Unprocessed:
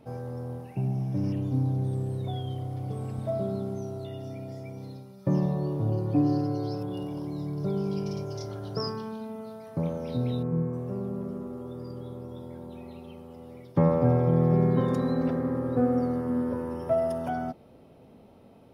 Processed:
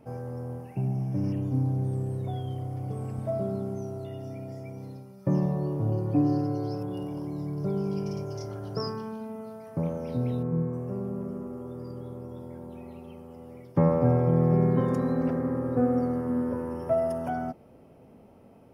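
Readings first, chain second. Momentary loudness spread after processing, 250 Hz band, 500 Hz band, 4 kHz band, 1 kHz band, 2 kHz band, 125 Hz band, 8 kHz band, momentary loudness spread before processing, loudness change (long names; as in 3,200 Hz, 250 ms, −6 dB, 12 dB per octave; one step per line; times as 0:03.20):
16 LU, 0.0 dB, 0.0 dB, −4.0 dB, 0.0 dB, −0.5 dB, 0.0 dB, can't be measured, 16 LU, 0.0 dB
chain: parametric band 3,800 Hz −12 dB 0.44 octaves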